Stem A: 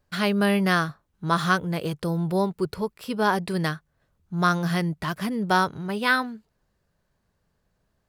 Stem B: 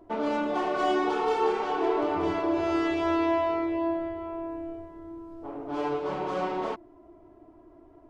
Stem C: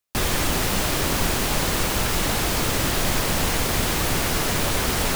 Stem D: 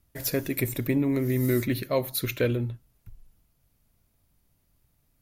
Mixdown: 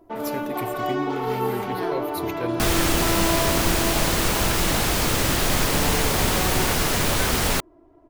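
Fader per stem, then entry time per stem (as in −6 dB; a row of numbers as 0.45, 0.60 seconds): −16.0, −0.5, +1.0, −6.5 decibels; 1.10, 0.00, 2.45, 0.00 seconds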